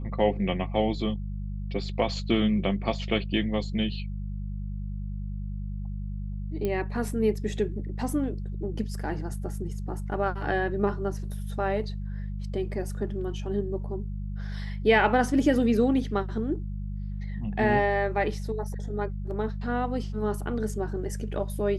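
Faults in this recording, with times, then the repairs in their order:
hum 50 Hz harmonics 4 -33 dBFS
6.65 s: pop -17 dBFS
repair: de-click; de-hum 50 Hz, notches 4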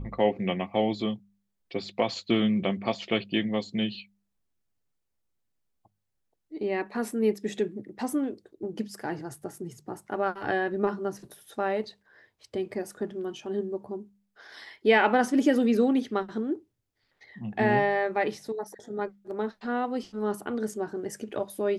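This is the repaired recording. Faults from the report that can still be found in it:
nothing left

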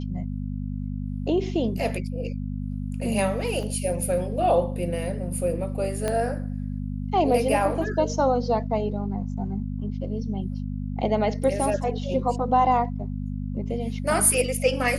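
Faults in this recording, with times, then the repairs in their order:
hum 50 Hz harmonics 5 -30 dBFS
3.63 s: dropout 2.6 ms
6.08 s: pop -13 dBFS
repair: de-click; de-hum 50 Hz, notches 5; interpolate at 3.63 s, 2.6 ms

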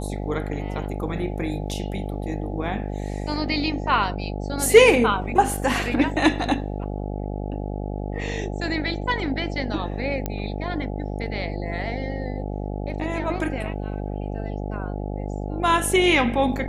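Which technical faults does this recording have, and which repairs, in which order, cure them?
buzz 50 Hz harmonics 17 -29 dBFS
10.26 s: pop -12 dBFS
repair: de-click; de-hum 50 Hz, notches 17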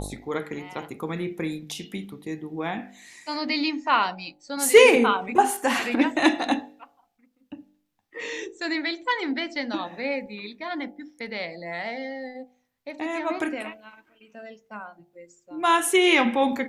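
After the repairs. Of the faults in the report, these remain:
nothing left

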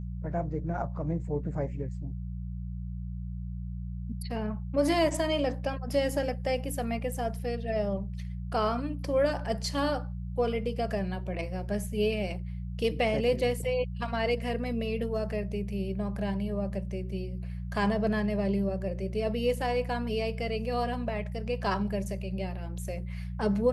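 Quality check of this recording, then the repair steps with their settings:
hum 60 Hz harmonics 3 -36 dBFS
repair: de-hum 60 Hz, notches 3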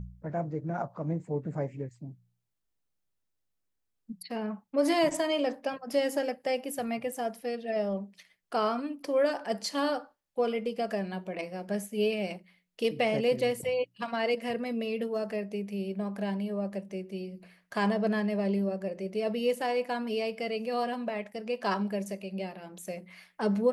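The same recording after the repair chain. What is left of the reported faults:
nothing left

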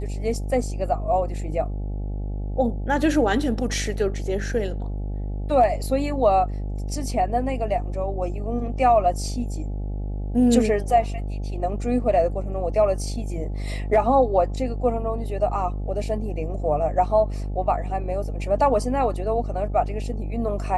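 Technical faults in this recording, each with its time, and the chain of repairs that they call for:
buzz 50 Hz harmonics 17 -28 dBFS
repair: de-hum 50 Hz, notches 17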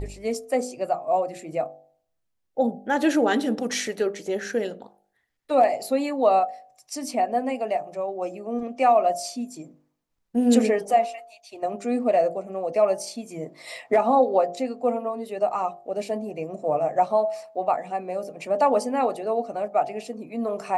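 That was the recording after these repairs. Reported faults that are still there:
nothing left

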